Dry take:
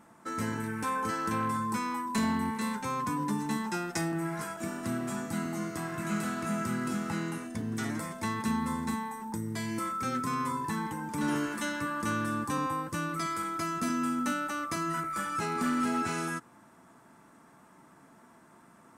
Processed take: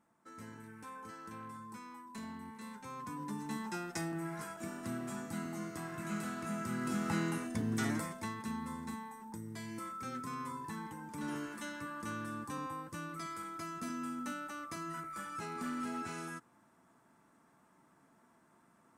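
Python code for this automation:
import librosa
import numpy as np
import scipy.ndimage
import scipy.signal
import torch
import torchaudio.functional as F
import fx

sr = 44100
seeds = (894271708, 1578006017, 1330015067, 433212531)

y = fx.gain(x, sr, db=fx.line((2.44, -17.0), (3.67, -7.0), (6.63, -7.0), (7.13, -0.5), (7.93, -0.5), (8.37, -10.0)))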